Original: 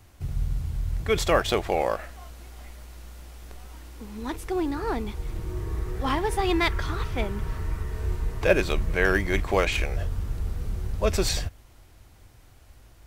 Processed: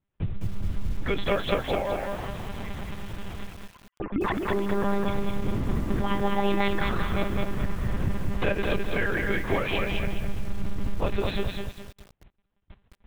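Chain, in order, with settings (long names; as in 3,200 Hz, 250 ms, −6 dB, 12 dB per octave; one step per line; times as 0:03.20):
0:03.46–0:04.48: three sine waves on the formant tracks
noise gate −47 dBFS, range −35 dB
downward compressor 8 to 1, threshold −31 dBFS, peak gain reduction 17 dB
one-pitch LPC vocoder at 8 kHz 200 Hz
feedback echo at a low word length 210 ms, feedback 35%, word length 9 bits, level −3 dB
level +7 dB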